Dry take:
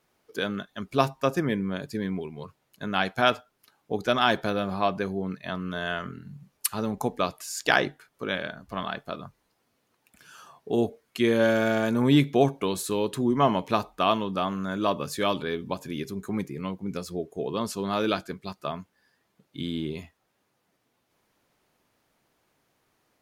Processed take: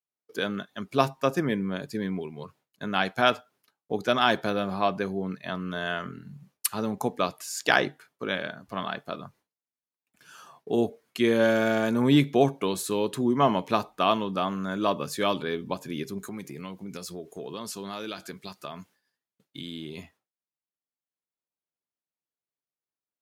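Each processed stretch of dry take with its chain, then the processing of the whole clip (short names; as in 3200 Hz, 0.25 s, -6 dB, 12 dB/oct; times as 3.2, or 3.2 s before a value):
16.18–19.98 high shelf 2100 Hz +8 dB + compressor 3:1, threshold -35 dBFS
whole clip: expander -52 dBFS; HPF 110 Hz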